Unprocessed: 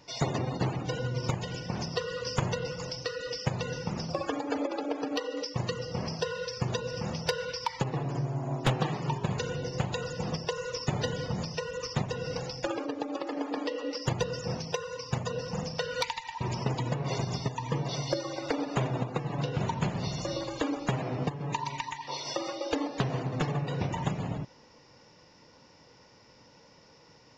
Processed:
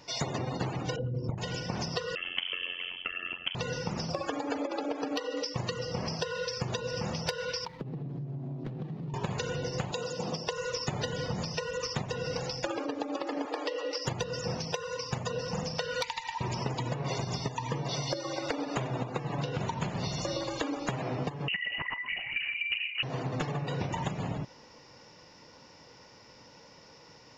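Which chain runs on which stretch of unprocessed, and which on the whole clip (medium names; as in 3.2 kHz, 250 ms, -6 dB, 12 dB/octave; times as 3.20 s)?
0.96–1.38 s: resonances exaggerated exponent 2 + low-pass 2.2 kHz 6 dB/octave
2.15–3.55 s: frequency inversion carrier 3.2 kHz + AM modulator 89 Hz, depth 100%
7.65–9.14 s: median filter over 15 samples + FFT filter 110 Hz 0 dB, 160 Hz +10 dB, 240 Hz +7 dB, 960 Hz -11 dB, 3.9 kHz -6 dB, 8.3 kHz -24 dB + compression 8:1, threshold -36 dBFS
9.91–10.48 s: high-pass 170 Hz + peaking EQ 1.8 kHz -8.5 dB 0.91 oct
13.45–14.05 s: steep high-pass 310 Hz 72 dB/octave + hard clipper -20 dBFS
21.48–23.03 s: resonances exaggerated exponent 2 + LPC vocoder at 8 kHz whisper + frequency inversion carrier 2.9 kHz
whole clip: bass shelf 480 Hz -3 dB; compression, threshold -33 dBFS; trim +4 dB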